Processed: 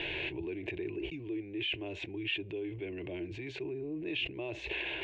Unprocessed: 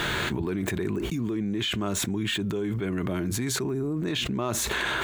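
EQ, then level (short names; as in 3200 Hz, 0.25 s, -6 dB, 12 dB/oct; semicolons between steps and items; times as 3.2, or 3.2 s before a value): ladder low-pass 2800 Hz, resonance 75%; bell 320 Hz +9 dB 0.59 oct; fixed phaser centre 530 Hz, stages 4; +1.5 dB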